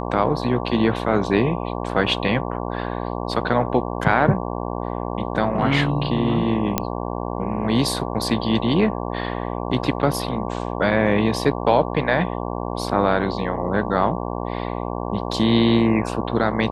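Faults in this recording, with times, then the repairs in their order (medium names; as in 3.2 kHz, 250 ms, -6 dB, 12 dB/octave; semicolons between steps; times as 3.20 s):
buzz 60 Hz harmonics 19 -27 dBFS
6.78 s: pop -4 dBFS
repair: de-click; de-hum 60 Hz, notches 19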